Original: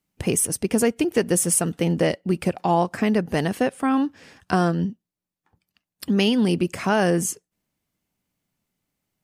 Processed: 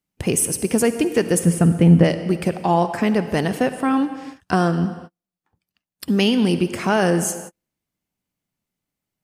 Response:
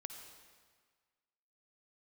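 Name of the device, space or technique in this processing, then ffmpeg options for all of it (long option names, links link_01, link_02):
keyed gated reverb: -filter_complex "[0:a]asplit=3[link_01][link_02][link_03];[link_01]afade=type=out:start_time=1.38:duration=0.02[link_04];[link_02]bass=frequency=250:gain=12,treble=frequency=4000:gain=-14,afade=type=in:start_time=1.38:duration=0.02,afade=type=out:start_time=2.03:duration=0.02[link_05];[link_03]afade=type=in:start_time=2.03:duration=0.02[link_06];[link_04][link_05][link_06]amix=inputs=3:normalize=0,asplit=3[link_07][link_08][link_09];[1:a]atrim=start_sample=2205[link_10];[link_08][link_10]afir=irnorm=-1:irlink=0[link_11];[link_09]apad=whole_len=407243[link_12];[link_11][link_12]sidechaingate=range=-50dB:threshold=-47dB:ratio=16:detection=peak,volume=5.5dB[link_13];[link_07][link_13]amix=inputs=2:normalize=0,volume=-4.5dB"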